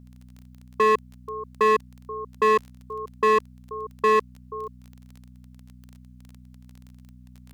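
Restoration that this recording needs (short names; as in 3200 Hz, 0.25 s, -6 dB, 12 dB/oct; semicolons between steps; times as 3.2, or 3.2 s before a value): clip repair -15 dBFS; de-click; de-hum 62 Hz, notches 4; inverse comb 0.482 s -18.5 dB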